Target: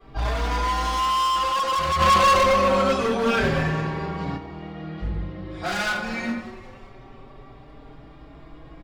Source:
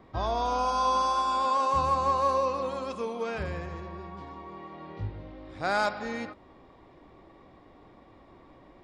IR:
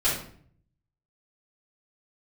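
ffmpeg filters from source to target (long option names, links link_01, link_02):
-filter_complex "[1:a]atrim=start_sample=2205[link_01];[0:a][link_01]afir=irnorm=-1:irlink=0,asoftclip=type=hard:threshold=-18.5dB,equalizer=frequency=570:width_type=o:width=1.8:gain=-3.5,asplit=6[link_02][link_03][link_04][link_05][link_06][link_07];[link_03]adelay=193,afreqshift=140,volume=-17.5dB[link_08];[link_04]adelay=386,afreqshift=280,volume=-22.4dB[link_09];[link_05]adelay=579,afreqshift=420,volume=-27.3dB[link_10];[link_06]adelay=772,afreqshift=560,volume=-32.1dB[link_11];[link_07]adelay=965,afreqshift=700,volume=-37dB[link_12];[link_02][link_08][link_09][link_10][link_11][link_12]amix=inputs=6:normalize=0,asplit=3[link_13][link_14][link_15];[link_13]afade=type=out:start_time=1.99:duration=0.02[link_16];[link_14]acontrast=69,afade=type=in:start_time=1.99:duration=0.02,afade=type=out:start_time=4.36:duration=0.02[link_17];[link_15]afade=type=in:start_time=4.36:duration=0.02[link_18];[link_16][link_17][link_18]amix=inputs=3:normalize=0,asplit=2[link_19][link_20];[link_20]adelay=4.6,afreqshift=0.26[link_21];[link_19][link_21]amix=inputs=2:normalize=1"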